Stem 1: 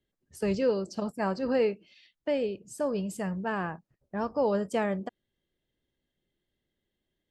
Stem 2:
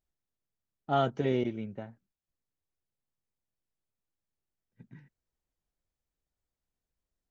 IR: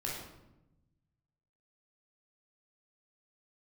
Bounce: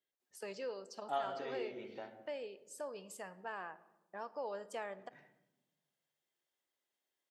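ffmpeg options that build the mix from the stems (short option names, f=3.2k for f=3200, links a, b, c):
-filter_complex "[0:a]volume=-7.5dB,asplit=3[a][b][c];[b]volume=-18dB[d];[1:a]adelay=200,volume=-1dB,asplit=2[e][f];[f]volume=-7.5dB[g];[c]apad=whole_len=331141[h];[e][h]sidechaincompress=threshold=-46dB:ratio=8:attack=16:release=117[i];[2:a]atrim=start_sample=2205[j];[d][g]amix=inputs=2:normalize=0[k];[k][j]afir=irnorm=-1:irlink=0[l];[a][i][l]amix=inputs=3:normalize=0,highpass=540,acompressor=threshold=-46dB:ratio=1.5"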